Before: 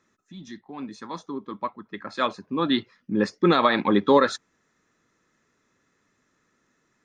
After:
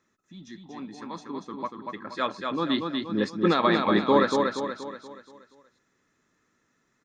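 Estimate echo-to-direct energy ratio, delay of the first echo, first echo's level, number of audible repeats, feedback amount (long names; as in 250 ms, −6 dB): −3.0 dB, 238 ms, −4.0 dB, 5, 46%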